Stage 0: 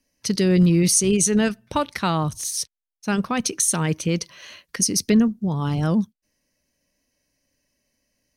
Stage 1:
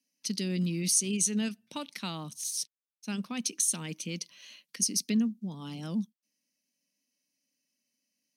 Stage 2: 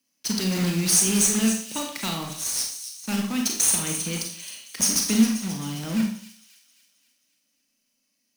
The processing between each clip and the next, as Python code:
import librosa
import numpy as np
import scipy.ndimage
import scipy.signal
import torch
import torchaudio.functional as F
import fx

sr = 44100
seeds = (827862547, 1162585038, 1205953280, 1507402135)

y1 = scipy.signal.sosfilt(scipy.signal.butter(4, 210.0, 'highpass', fs=sr, output='sos'), x)
y1 = fx.band_shelf(y1, sr, hz=780.0, db=-11.0, octaves=2.8)
y1 = y1 * 10.0 ** (-7.0 / 20.0)
y2 = fx.block_float(y1, sr, bits=3)
y2 = fx.echo_wet_highpass(y2, sr, ms=266, feedback_pct=52, hz=3300.0, wet_db=-10.0)
y2 = fx.rev_schroeder(y2, sr, rt60_s=0.53, comb_ms=28, drr_db=1.5)
y2 = y2 * 10.0 ** (5.0 / 20.0)